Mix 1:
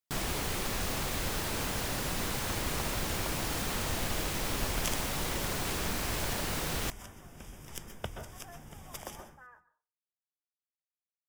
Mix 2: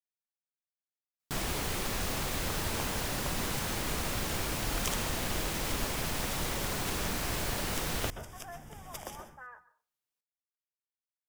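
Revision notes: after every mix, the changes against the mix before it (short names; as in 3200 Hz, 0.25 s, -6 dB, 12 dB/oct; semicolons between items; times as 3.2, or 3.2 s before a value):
speech +6.0 dB; first sound: entry +1.20 s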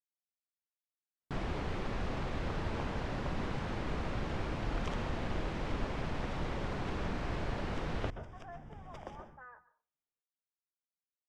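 master: add tape spacing loss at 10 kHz 33 dB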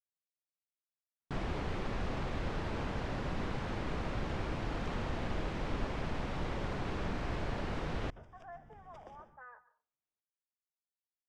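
second sound -8.5 dB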